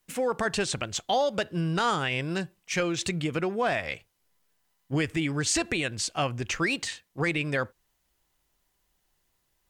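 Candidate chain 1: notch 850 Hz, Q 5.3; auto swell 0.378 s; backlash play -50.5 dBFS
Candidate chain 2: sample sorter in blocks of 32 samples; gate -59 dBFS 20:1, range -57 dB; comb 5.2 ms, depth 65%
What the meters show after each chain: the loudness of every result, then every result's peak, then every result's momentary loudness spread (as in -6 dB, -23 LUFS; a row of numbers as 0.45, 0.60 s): -30.5, -26.5 LUFS; -16.5, -13.0 dBFS; 14, 7 LU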